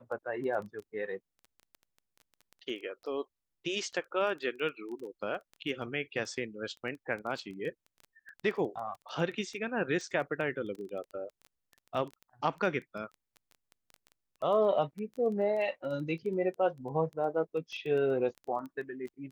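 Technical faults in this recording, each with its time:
crackle 11/s -38 dBFS

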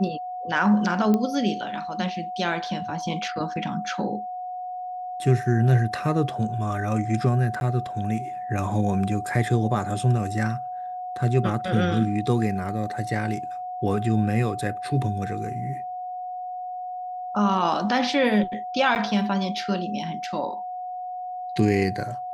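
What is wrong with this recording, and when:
tone 730 Hz -30 dBFS
1.14 pop -12 dBFS
7.6–7.61 gap 11 ms
18.95–18.96 gap 9.2 ms

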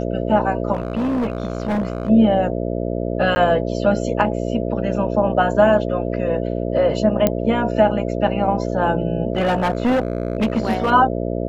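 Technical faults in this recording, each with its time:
buzz 60 Hz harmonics 11 -23 dBFS
0.73–2.1 clipped -17.5 dBFS
3.35–3.36 gap 10 ms
7.27 pop -3 dBFS
9.33–10.91 clipped -14 dBFS

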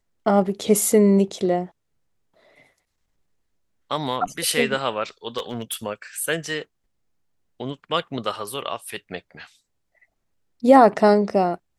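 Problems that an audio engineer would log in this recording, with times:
5.37–5.75 clipped -21.5 dBFS

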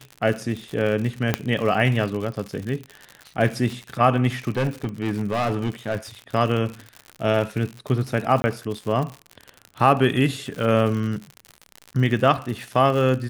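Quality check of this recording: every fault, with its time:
crackle 90/s -28 dBFS
1.34 pop -5 dBFS
4.57–5.96 clipped -18.5 dBFS
8.42–8.44 gap 20 ms

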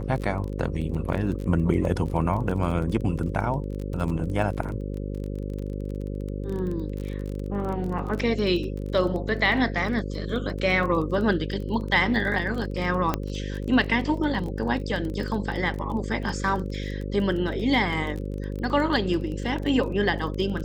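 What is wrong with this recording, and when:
buzz 50 Hz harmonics 11 -31 dBFS
crackle 21/s -31 dBFS
13.14 pop -10 dBFS

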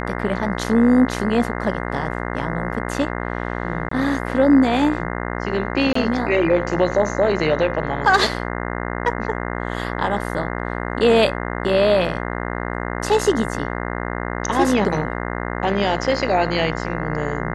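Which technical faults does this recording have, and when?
buzz 60 Hz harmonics 35 -26 dBFS
3.89–3.91 gap 24 ms
5.93–5.95 gap 24 ms

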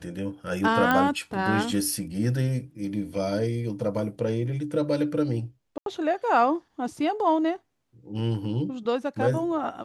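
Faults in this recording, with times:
0.91 pop -10 dBFS
5.78–5.86 gap 82 ms

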